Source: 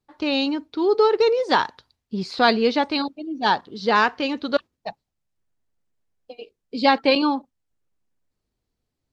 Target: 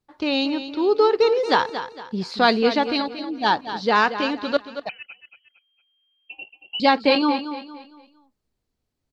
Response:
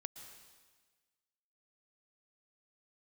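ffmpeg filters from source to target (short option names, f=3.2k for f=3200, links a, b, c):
-filter_complex "[0:a]asplit=2[a][b];[b]aecho=0:1:229|458|687|916:0.282|0.101|0.0365|0.0131[c];[a][c]amix=inputs=2:normalize=0,asettb=1/sr,asplit=3[d][e][f];[d]atrim=end=4.894[g];[e]atrim=start=4.89:end=6.8,asetpts=PTS-STARTPTS,afade=t=in:d=0.004:c=qsin,afade=t=out:st=1.906:d=0.004:c=qsin,lowpass=f=2.7k:t=q:w=0.5098,lowpass=f=2.7k:t=q:w=0.6013,lowpass=f=2.7k:t=q:w=0.9,lowpass=f=2.7k:t=q:w=2.563,afreqshift=-3200[h];[f]atrim=start=6.796[i];[g][h]acrossfade=d=0.004:c1=hsin:c2=qsin[j];[j][i]acrossfade=d=0.004:c1=qsin:c2=hsin"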